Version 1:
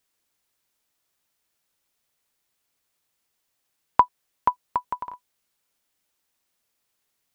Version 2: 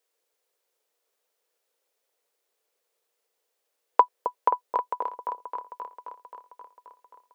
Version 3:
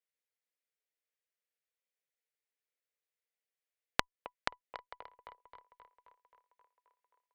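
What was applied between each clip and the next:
resonant high-pass 470 Hz, resonance Q 4.9; on a send: repeats that get brighter 0.265 s, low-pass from 750 Hz, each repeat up 1 oct, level -6 dB; on the sum: gain -3.5 dB
graphic EQ 250/1000/2000 Hz -11/-7/+10 dB; compressor 16:1, threshold -31 dBFS, peak gain reduction 15.5 dB; added harmonics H 3 -10 dB, 6 -42 dB, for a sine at -12 dBFS; gain +7 dB

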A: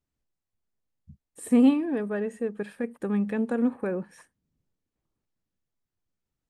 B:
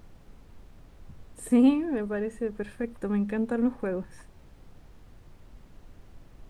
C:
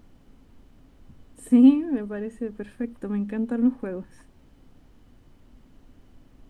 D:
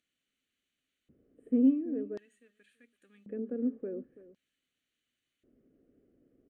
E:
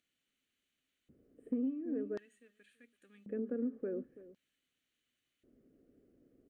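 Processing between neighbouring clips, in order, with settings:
added noise brown -47 dBFS; gain -1 dB
small resonant body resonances 260/3000 Hz, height 10 dB; gain -3.5 dB
fixed phaser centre 2200 Hz, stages 4; outdoor echo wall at 57 m, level -17 dB; LFO band-pass square 0.46 Hz 440–5200 Hz
dynamic EQ 1400 Hz, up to +7 dB, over -55 dBFS, Q 1.4; compressor 12:1, threshold -32 dBFS, peak gain reduction 13.5 dB

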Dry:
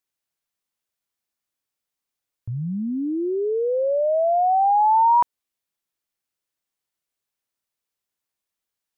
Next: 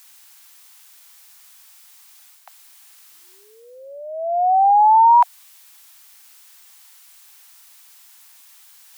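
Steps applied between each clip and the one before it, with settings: steep high-pass 720 Hz 72 dB/oct; tilt +1.5 dB/oct; reverse; upward compressor, threshold -31 dBFS; reverse; gain +5 dB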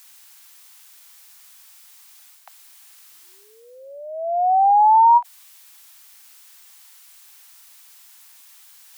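low shelf 380 Hz -5.5 dB; ending taper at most 460 dB/s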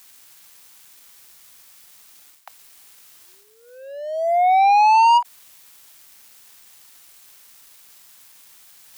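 sample leveller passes 2; gain -2.5 dB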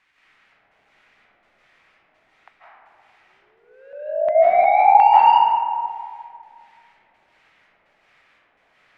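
LFO low-pass square 1.4 Hz 690–2100 Hz; reverb RT60 2.1 s, pre-delay 0.12 s, DRR -8.5 dB; gain -9.5 dB

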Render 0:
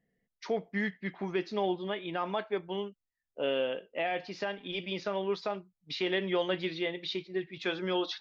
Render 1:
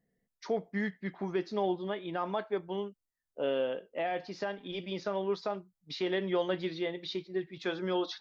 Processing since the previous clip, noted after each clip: bell 2600 Hz -7.5 dB 0.93 oct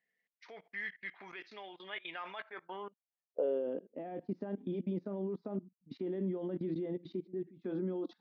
level quantiser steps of 21 dB; band-pass sweep 2300 Hz -> 240 Hz, 2.37–3.87; gain +13.5 dB

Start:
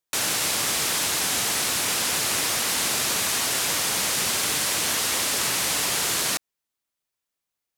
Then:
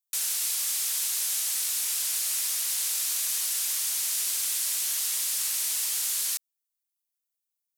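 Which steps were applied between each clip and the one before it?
pre-emphasis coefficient 0.97; gain -3 dB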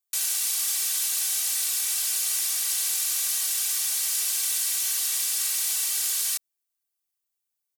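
comb 2.6 ms, depth 81%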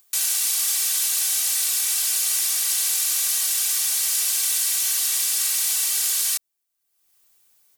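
upward compressor, threshold -48 dBFS; gain +4 dB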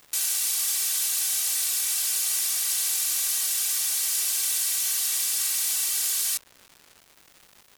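crackle 390/s -35 dBFS; gain -3.5 dB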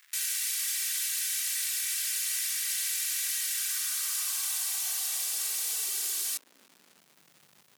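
high-pass sweep 1800 Hz -> 140 Hz, 3.48–7.43; gain -6 dB

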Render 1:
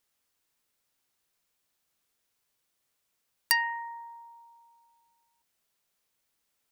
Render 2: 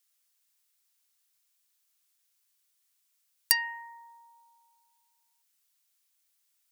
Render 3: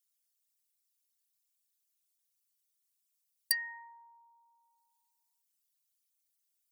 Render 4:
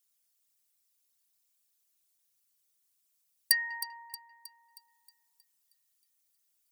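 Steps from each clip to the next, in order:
HPF 940 Hz 12 dB/oct; high shelf 3200 Hz +11 dB; gain -5.5 dB
formant sharpening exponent 2; gain -6.5 dB
split-band echo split 2900 Hz, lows 0.196 s, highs 0.315 s, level -13 dB; gain +5 dB

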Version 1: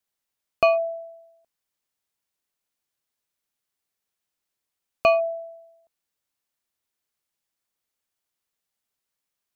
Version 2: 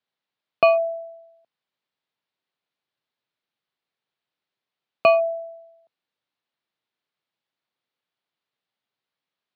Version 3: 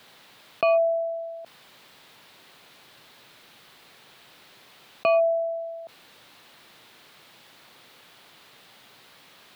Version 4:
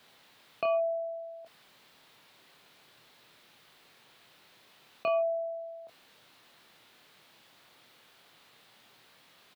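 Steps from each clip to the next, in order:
Chebyshev band-pass 120–4000 Hz, order 3; gain +2.5 dB
limiter -14.5 dBFS, peak gain reduction 8 dB; fast leveller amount 50%
doubler 26 ms -6.5 dB; gain -8.5 dB

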